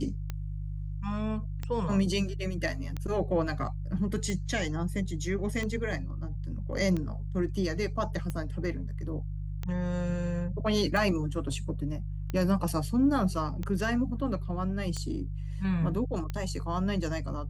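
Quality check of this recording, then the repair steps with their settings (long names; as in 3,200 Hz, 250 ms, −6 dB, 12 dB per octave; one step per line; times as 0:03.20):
mains hum 50 Hz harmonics 3 −35 dBFS
scratch tick 45 rpm −21 dBFS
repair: click removal
hum removal 50 Hz, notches 3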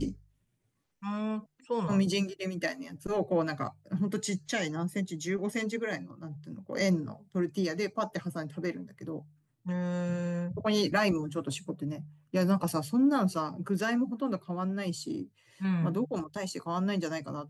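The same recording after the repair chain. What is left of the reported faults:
none of them is left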